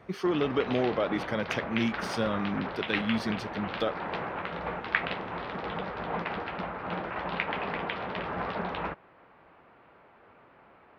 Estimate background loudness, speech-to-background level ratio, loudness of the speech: -34.5 LUFS, 3.5 dB, -31.0 LUFS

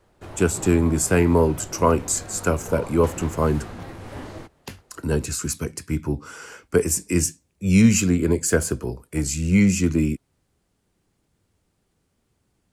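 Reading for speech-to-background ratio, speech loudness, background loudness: 16.5 dB, -21.5 LUFS, -38.0 LUFS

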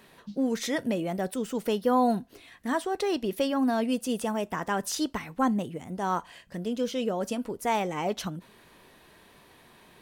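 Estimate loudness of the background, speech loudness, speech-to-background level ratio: -48.0 LUFS, -29.5 LUFS, 18.5 dB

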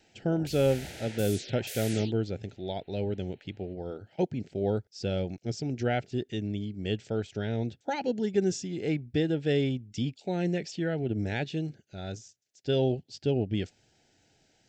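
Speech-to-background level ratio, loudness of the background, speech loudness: 9.5 dB, -41.0 LUFS, -31.5 LUFS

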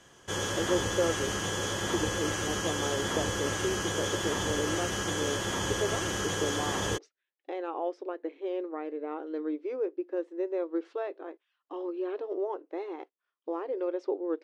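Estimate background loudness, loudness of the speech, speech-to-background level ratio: -31.0 LUFS, -35.5 LUFS, -4.5 dB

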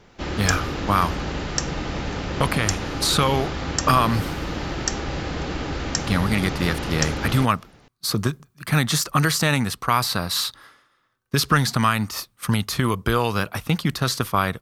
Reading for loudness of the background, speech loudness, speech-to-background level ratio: -27.5 LUFS, -22.5 LUFS, 5.0 dB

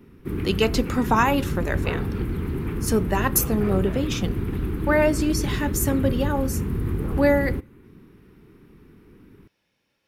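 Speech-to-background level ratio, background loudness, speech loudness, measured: 4.0 dB, -28.0 LUFS, -24.0 LUFS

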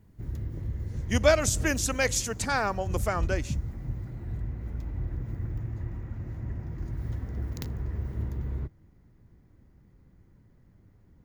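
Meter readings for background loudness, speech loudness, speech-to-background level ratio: -35.0 LUFS, -27.5 LUFS, 7.5 dB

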